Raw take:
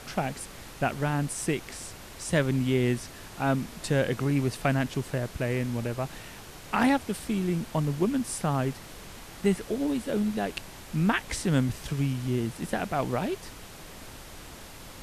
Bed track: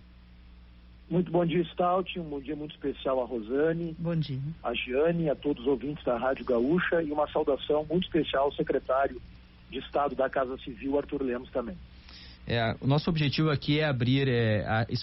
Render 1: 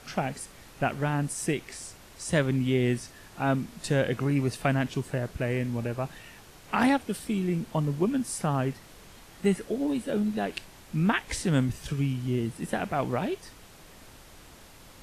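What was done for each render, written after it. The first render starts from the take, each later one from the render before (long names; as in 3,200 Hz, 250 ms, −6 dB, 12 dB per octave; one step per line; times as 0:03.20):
noise reduction from a noise print 6 dB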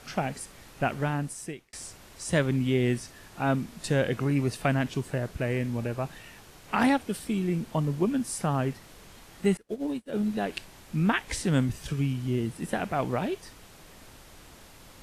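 0:01.03–0:01.73: fade out
0:09.57–0:10.23: expander for the loud parts 2.5 to 1, over −45 dBFS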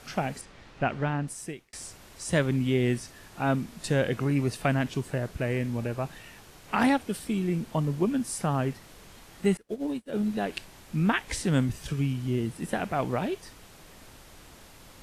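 0:00.41–0:01.28: low-pass filter 4,200 Hz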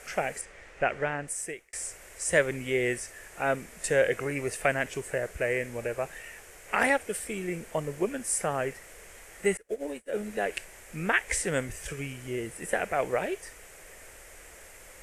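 octave-band graphic EQ 125/250/500/1,000/2,000/4,000/8,000 Hz −10/−11/+8/−6/+10/−11/+9 dB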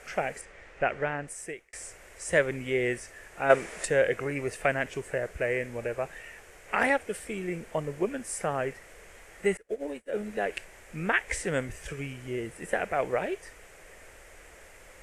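0:03.50–0:03.85: gain on a spectral selection 310–11,000 Hz +10 dB
high-shelf EQ 6,400 Hz −10.5 dB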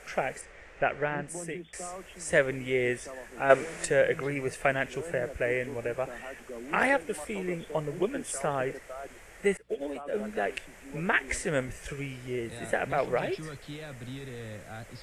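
mix in bed track −15.5 dB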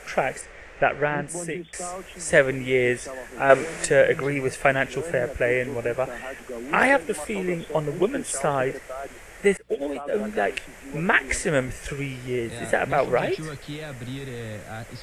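level +6.5 dB
brickwall limiter −2 dBFS, peak gain reduction 2.5 dB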